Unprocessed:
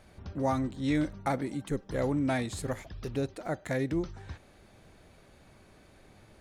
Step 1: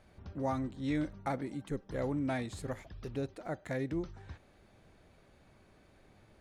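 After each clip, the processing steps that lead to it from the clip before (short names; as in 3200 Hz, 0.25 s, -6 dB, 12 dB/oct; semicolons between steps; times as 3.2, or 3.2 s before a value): high shelf 5200 Hz -6 dB; gain -5 dB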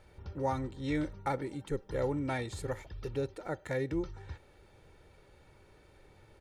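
comb 2.2 ms, depth 52%; gain +1.5 dB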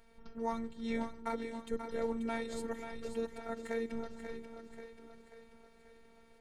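split-band echo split 360 Hz, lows 0.406 s, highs 0.536 s, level -8 dB; robotiser 228 Hz; gain -1 dB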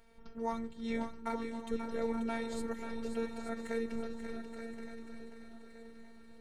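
swung echo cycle 1.168 s, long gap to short 3:1, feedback 31%, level -9 dB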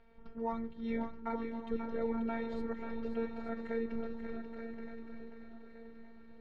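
air absorption 300 m; soft clip -20.5 dBFS, distortion -30 dB; gain +1 dB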